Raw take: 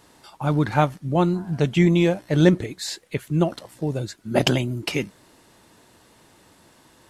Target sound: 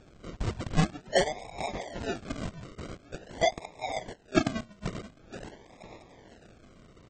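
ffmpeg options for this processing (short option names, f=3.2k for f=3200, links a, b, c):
-filter_complex "[0:a]asettb=1/sr,asplit=3[a][b][c];[a]atrim=end=3.584[d];[b]atrim=start=3.58:end=4.67,asetpts=PTS-STARTPTS,afade=t=in:d=0.004:c=qsin,afade=t=out:st=1.086:d=0.004:c=qsin,tiltshelf=f=970:g=4[e];[c]atrim=start=4.666[f];[d][e]acrossfade=d=0.004:c1=hsin:c2=qsin[g];[g][f]acrossfade=d=0.004:c1=qsin:c2=hsin,aecho=1:1:481|962|1443:0.2|0.0619|0.0192,acrossover=split=850[h][i];[i]acompressor=threshold=-41dB:ratio=6[j];[h][j]amix=inputs=2:normalize=0,afftfilt=real='re*between(b*sr/4096,620,5700)':imag='im*between(b*sr/4096,620,5700)':win_size=4096:overlap=0.75,acrusher=samples=41:mix=1:aa=0.000001:lfo=1:lforange=24.6:lforate=0.46,acontrast=62,volume=-2.5dB" -ar 32000 -c:a aac -b:a 24k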